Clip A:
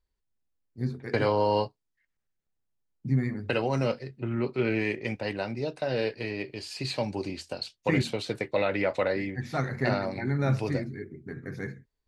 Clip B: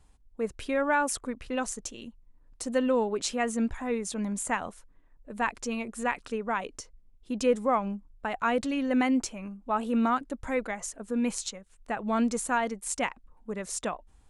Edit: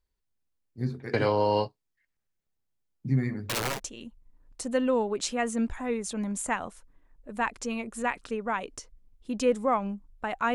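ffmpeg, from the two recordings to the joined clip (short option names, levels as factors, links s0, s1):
-filter_complex "[0:a]asettb=1/sr,asplit=3[s0][s1][s2];[s0]atrim=end=3.304[s3];[s1]atrim=start=3.3:end=3.8,asetpts=PTS-STARTPTS,afade=t=in:d=0.004:c=qsin,afade=t=out:st=0.496:d=0.004:c=qsin,aeval=exprs='(mod(14.1*val(0)+1,2)-1)/14.1':c=same[s4];[s2]atrim=start=3.796[s5];[s3][s4]acrossfade=d=0.004:c1=hsin:c2=qsin[s6];[s6][s5]acrossfade=d=0.004:c1=qsin:c2=hsin,apad=whole_dur=10.54,atrim=end=10.54,atrim=end=3.8,asetpts=PTS-STARTPTS[s7];[1:a]atrim=start=1.73:end=8.55,asetpts=PTS-STARTPTS[s8];[s7][s8]acrossfade=d=0.08:c1=tri:c2=tri"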